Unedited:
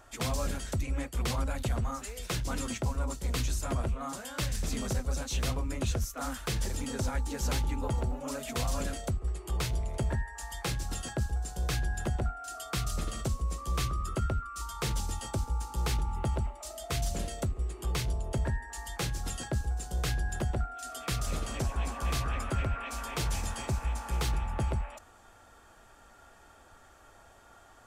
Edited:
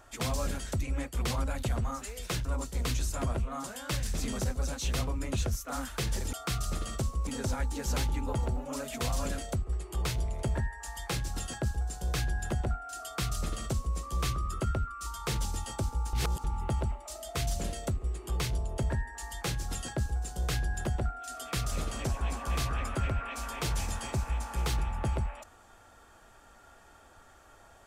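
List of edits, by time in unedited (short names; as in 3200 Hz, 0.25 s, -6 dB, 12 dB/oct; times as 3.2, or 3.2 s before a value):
2.45–2.94 cut
12.59–13.53 copy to 6.82
15.68–15.99 reverse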